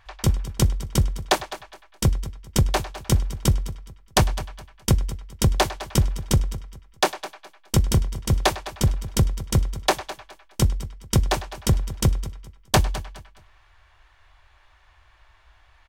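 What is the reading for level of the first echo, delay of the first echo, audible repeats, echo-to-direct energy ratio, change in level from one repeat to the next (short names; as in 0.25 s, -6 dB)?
-15.5 dB, 0.209 s, 2, -15.0 dB, -11.0 dB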